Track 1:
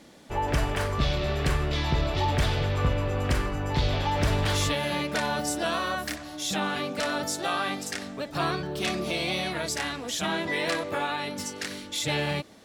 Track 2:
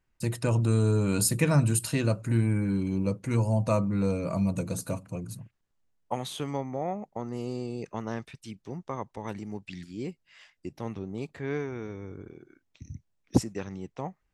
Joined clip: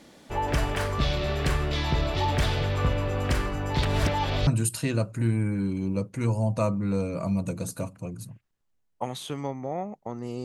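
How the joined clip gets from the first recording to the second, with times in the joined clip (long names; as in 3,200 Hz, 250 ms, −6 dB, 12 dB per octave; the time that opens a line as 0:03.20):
track 1
0:03.83–0:04.47: reverse
0:04.47: continue with track 2 from 0:01.57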